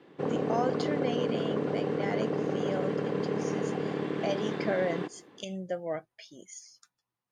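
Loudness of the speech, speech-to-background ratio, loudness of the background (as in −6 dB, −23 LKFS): −36.5 LKFS, −4.5 dB, −32.0 LKFS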